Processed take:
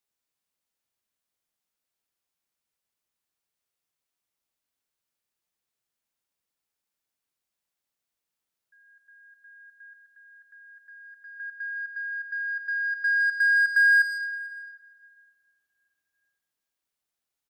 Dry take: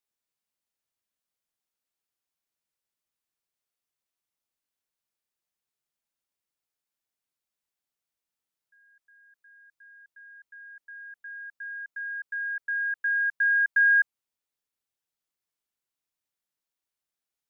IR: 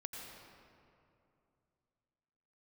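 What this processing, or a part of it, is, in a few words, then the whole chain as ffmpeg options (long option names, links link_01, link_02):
saturated reverb return: -filter_complex "[0:a]asettb=1/sr,asplit=3[link_01][link_02][link_03];[link_01]atrim=end=11.924[link_04];[link_02]atrim=start=11.92:end=12.96,asetpts=PTS-STARTPTS,afade=type=in:duration=0.004:curve=qsin,afade=type=out:start_time=1.036:duration=0.004:curve=qsin,equalizer=frequency=1500:width=1.5:gain=-3.5[link_05];[link_03]atrim=start=12.956[link_06];[link_04][link_05]acrossfade=duration=0.004:curve1=hsin:curve2=qsin[link_07];[link_07][link_06]acrossfade=duration=0.004:curve1=qsin:curve2=hsin,asplit=2[link_08][link_09];[1:a]atrim=start_sample=2205[link_10];[link_09][link_10]afir=irnorm=-1:irlink=0,asoftclip=type=tanh:threshold=-28dB,volume=-1.5dB[link_11];[link_08][link_11]amix=inputs=2:normalize=0,asettb=1/sr,asplit=3[link_12][link_13][link_14];[link_12]atrim=end=9.934[link_15];[link_13]atrim=start=9.93:end=11.4,asetpts=PTS-STARTPTS,afade=type=in:duration=0.004:curve=qsin,afade=type=out:start_time=1.466:duration=0.004:curve=qsin,bandreject=frequency=1600:width=11[link_16];[link_14]atrim=start=11.396[link_17];[link_15][link_16]acrossfade=duration=0.004:curve1=hsin:curve2=qsin[link_18];[link_18][link_17]acrossfade=duration=0.004:curve1=qsin:curve2=hsin,aecho=1:1:446:0.0841,volume=-1dB"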